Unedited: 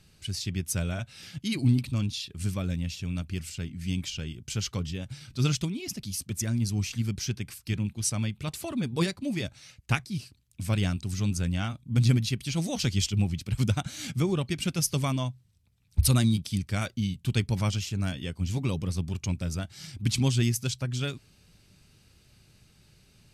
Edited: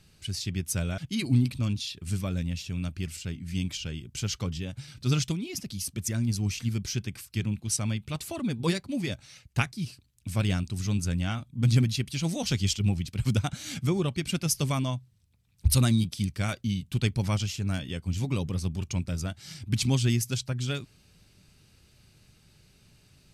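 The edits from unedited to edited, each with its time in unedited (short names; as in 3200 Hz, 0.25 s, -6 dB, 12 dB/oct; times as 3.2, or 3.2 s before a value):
0.98–1.31 cut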